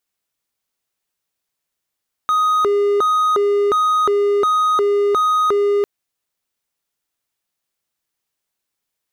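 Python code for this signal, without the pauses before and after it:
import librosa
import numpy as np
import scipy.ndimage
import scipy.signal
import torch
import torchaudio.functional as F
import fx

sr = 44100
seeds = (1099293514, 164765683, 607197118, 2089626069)

y = fx.siren(sr, length_s=3.55, kind='hi-lo', low_hz=407.0, high_hz=1250.0, per_s=1.4, wave='triangle', level_db=-11.0)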